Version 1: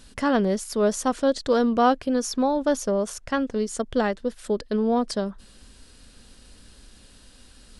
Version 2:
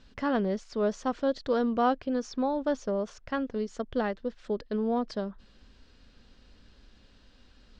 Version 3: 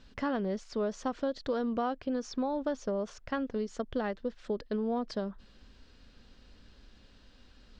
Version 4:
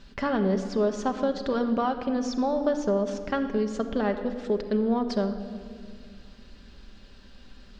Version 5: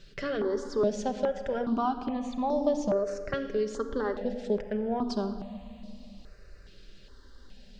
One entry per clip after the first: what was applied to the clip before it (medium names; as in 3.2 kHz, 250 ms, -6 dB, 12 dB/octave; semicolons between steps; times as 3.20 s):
Bessel low-pass 3.8 kHz, order 8; trim -6 dB
compression 6:1, threshold -28 dBFS, peak gain reduction 8.5 dB
simulated room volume 3900 m³, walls mixed, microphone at 1.2 m; trim +5.5 dB
stepped phaser 2.4 Hz 240–1500 Hz